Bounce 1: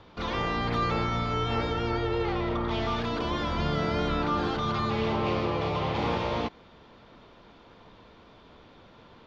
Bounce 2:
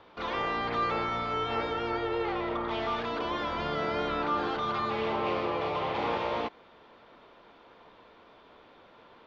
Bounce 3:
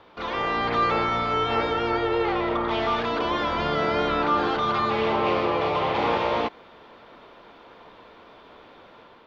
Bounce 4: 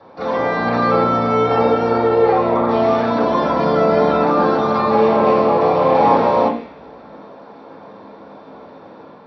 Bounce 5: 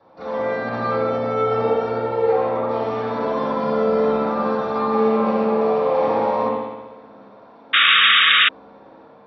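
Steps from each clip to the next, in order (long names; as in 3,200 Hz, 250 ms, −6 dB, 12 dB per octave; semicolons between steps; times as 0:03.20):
bass and treble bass −13 dB, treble −9 dB
automatic gain control gain up to 4 dB; level +3 dB
convolution reverb RT60 0.50 s, pre-delay 3 ms, DRR −7 dB; level −6.5 dB
spring reverb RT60 1.2 s, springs 59 ms, chirp 30 ms, DRR −0.5 dB; sound drawn into the spectrogram noise, 0:07.73–0:08.49, 1,100–3,800 Hz −4 dBFS; level −10 dB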